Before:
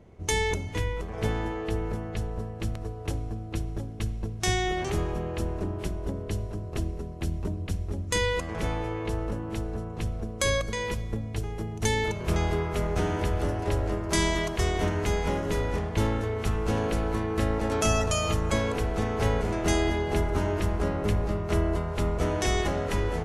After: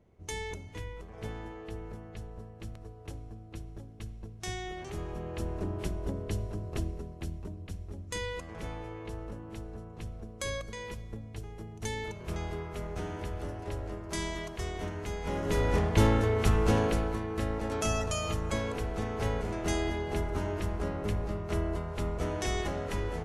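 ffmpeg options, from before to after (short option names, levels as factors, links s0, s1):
-af "volume=3.16,afade=t=in:st=4.89:d=0.88:silence=0.354813,afade=t=out:st=6.7:d=0.75:silence=0.421697,afade=t=in:st=15.2:d=0.59:silence=0.237137,afade=t=out:st=16.63:d=0.56:silence=0.375837"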